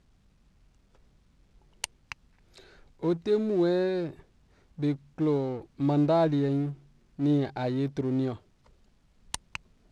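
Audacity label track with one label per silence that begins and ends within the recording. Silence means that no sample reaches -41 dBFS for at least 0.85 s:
8.360000	9.340000	silence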